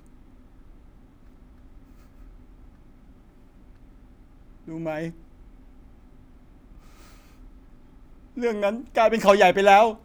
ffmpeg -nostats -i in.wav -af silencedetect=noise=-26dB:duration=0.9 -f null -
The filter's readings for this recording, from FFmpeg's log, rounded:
silence_start: 0.00
silence_end: 4.81 | silence_duration: 4.81
silence_start: 5.08
silence_end: 8.38 | silence_duration: 3.29